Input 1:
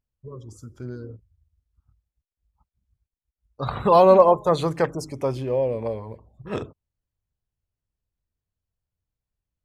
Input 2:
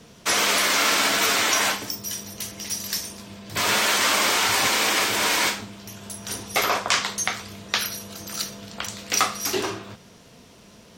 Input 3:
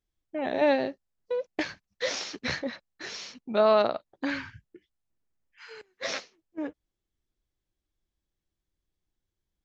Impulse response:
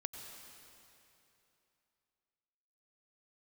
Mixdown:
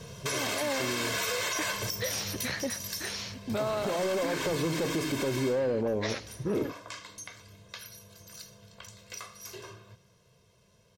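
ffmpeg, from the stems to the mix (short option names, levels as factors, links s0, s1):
-filter_complex "[0:a]acompressor=threshold=0.126:ratio=6,asoftclip=type=tanh:threshold=0.0355,equalizer=f=310:t=o:w=2:g=14.5,volume=1[s0];[1:a]equalizer=f=120:w=1.2:g=8,aecho=1:1:1.9:0.82,acompressor=threshold=0.0631:ratio=2,volume=0.891,afade=t=out:st=1.97:d=0.71:silence=0.375837,afade=t=out:st=5.36:d=0.48:silence=0.316228,asplit=2[s1][s2];[s2]volume=0.168[s3];[2:a]volume=1.12,asplit=2[s4][s5];[s5]volume=0.158[s6];[3:a]atrim=start_sample=2205[s7];[s3][s6]amix=inputs=2:normalize=0[s8];[s8][s7]afir=irnorm=-1:irlink=0[s9];[s0][s1][s4][s9]amix=inputs=4:normalize=0,alimiter=limit=0.0841:level=0:latency=1:release=154"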